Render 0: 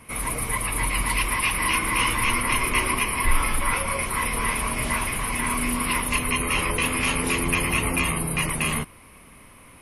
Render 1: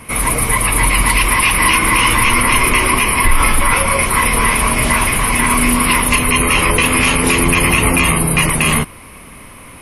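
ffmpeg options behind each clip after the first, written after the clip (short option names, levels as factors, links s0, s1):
-af "alimiter=level_in=4.47:limit=0.891:release=50:level=0:latency=1,volume=0.891"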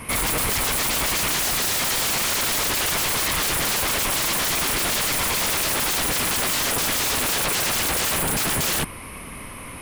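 -af "aeval=exprs='0.126*(abs(mod(val(0)/0.126+3,4)-2)-1)':c=same"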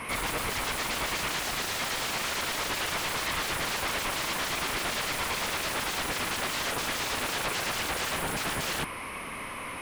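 -filter_complex "[0:a]asplit=2[s0][s1];[s1]highpass=f=720:p=1,volume=6.31,asoftclip=type=tanh:threshold=0.133[s2];[s0][s2]amix=inputs=2:normalize=0,lowpass=f=2700:p=1,volume=0.501,volume=0.531"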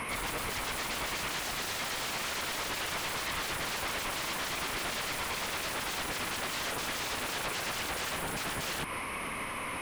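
-af "alimiter=level_in=2.51:limit=0.0631:level=0:latency=1:release=154,volume=0.398,volume=1.5"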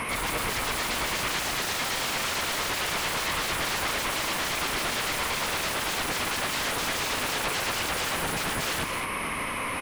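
-af "aecho=1:1:215:0.422,volume=1.88"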